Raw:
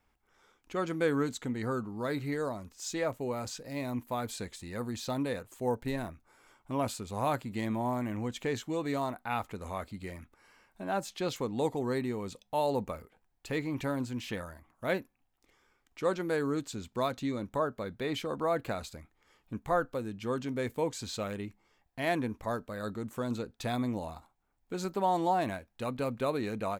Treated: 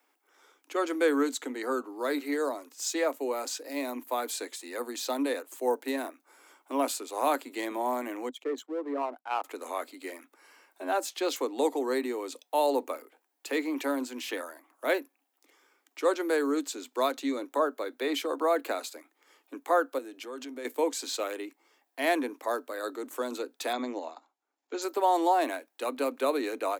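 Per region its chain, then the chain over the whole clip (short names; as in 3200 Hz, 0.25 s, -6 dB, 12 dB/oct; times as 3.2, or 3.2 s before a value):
8.29–9.44 formant sharpening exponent 2 + power-law curve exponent 1.4 + three-band expander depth 40%
19.98–20.65 HPF 61 Hz + compressor 10:1, threshold -38 dBFS + transient shaper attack -3 dB, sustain +3 dB
23.73–24.82 transient shaper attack -2 dB, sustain -8 dB + brick-wall FIR low-pass 7600 Hz
whole clip: steep high-pass 260 Hz 96 dB/oct; high shelf 9000 Hz +8 dB; gain +4 dB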